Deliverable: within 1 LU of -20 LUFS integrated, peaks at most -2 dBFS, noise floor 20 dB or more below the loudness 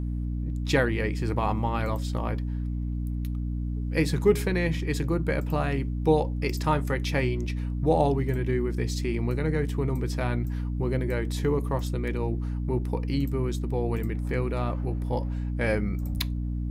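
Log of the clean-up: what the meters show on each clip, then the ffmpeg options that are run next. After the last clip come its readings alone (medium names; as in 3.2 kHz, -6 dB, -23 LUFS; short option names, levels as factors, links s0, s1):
hum 60 Hz; highest harmonic 300 Hz; hum level -27 dBFS; loudness -28.0 LUFS; peak level -8.5 dBFS; loudness target -20.0 LUFS
-> -af "bandreject=f=60:t=h:w=4,bandreject=f=120:t=h:w=4,bandreject=f=180:t=h:w=4,bandreject=f=240:t=h:w=4,bandreject=f=300:t=h:w=4"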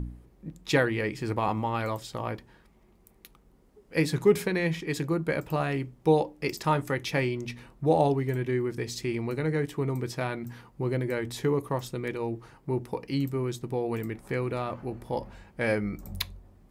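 hum not found; loudness -29.5 LUFS; peak level -9.5 dBFS; loudness target -20.0 LUFS
-> -af "volume=2.99,alimiter=limit=0.794:level=0:latency=1"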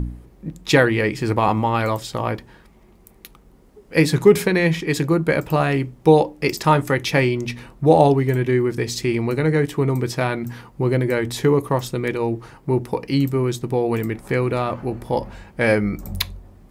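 loudness -20.0 LUFS; peak level -2.0 dBFS; noise floor -51 dBFS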